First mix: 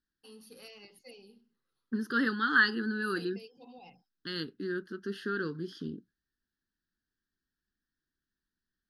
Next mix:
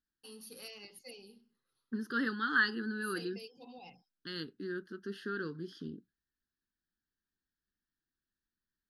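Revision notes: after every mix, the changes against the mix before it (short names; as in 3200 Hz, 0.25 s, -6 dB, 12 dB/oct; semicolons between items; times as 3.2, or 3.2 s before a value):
first voice: add high shelf 4500 Hz +8 dB; second voice -4.5 dB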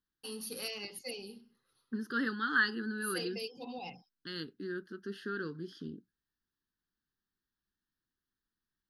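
first voice +8.5 dB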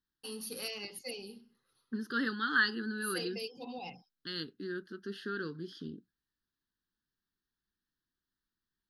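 second voice: add bell 3800 Hz +5 dB 0.75 oct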